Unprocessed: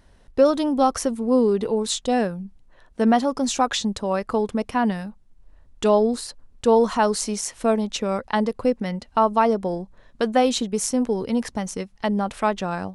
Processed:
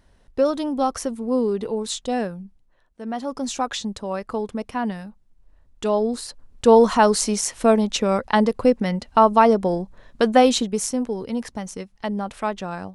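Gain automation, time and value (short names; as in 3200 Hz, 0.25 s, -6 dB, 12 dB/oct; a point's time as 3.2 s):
2.38 s -3 dB
3.02 s -15 dB
3.32 s -4 dB
5.87 s -4 dB
6.71 s +4 dB
10.45 s +4 dB
11.09 s -3.5 dB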